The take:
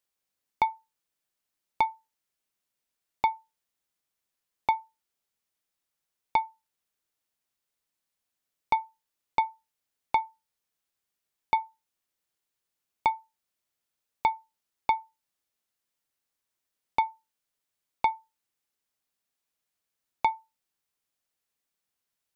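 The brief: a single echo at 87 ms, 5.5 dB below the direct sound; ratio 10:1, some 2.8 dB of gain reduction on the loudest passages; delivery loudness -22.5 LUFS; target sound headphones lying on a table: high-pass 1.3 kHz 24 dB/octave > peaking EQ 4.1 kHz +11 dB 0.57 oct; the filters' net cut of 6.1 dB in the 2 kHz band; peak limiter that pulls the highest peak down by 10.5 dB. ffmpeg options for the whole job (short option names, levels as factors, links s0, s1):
-af "equalizer=f=2000:t=o:g=-8,acompressor=threshold=0.0708:ratio=10,alimiter=level_in=1.12:limit=0.0631:level=0:latency=1,volume=0.891,highpass=f=1300:w=0.5412,highpass=f=1300:w=1.3066,equalizer=f=4100:t=o:w=0.57:g=11,aecho=1:1:87:0.531,volume=25.1"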